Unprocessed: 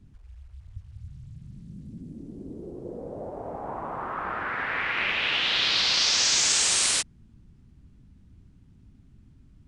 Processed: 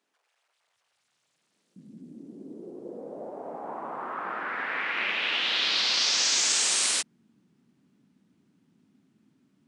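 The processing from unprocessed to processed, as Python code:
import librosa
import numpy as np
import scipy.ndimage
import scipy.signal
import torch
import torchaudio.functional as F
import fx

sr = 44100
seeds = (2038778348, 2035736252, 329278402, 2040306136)

y = fx.highpass(x, sr, hz=fx.steps((0.0, 510.0), (1.76, 200.0)), slope=24)
y = y * 10.0 ** (-2.0 / 20.0)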